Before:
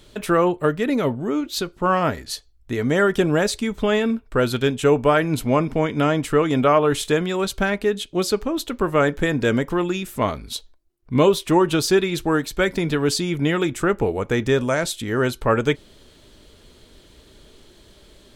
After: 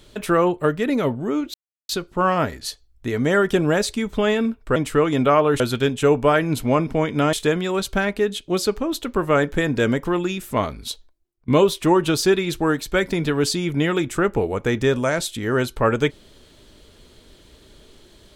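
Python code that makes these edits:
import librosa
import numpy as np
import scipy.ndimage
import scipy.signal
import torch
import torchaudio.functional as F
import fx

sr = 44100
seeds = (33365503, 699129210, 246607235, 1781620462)

y = fx.edit(x, sr, fx.insert_silence(at_s=1.54, length_s=0.35),
    fx.move(start_s=6.14, length_s=0.84, to_s=4.41),
    fx.fade_out_to(start_s=10.52, length_s=0.61, curve='qsin', floor_db=-20.5), tone=tone)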